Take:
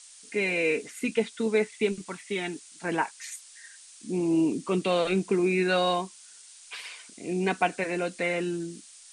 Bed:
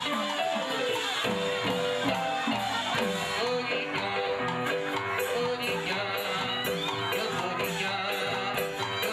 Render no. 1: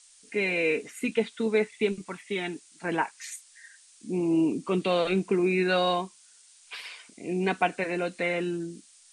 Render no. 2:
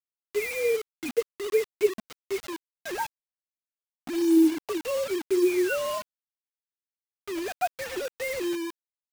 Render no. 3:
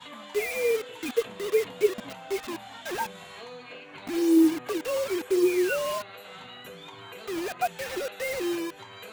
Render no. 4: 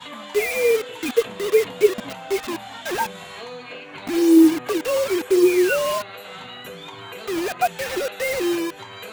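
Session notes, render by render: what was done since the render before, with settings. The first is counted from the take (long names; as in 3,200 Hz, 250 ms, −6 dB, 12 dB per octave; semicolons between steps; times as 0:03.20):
noise reduction from a noise print 6 dB
three sine waves on the formant tracks; bit reduction 6 bits
mix in bed −14 dB
level +7 dB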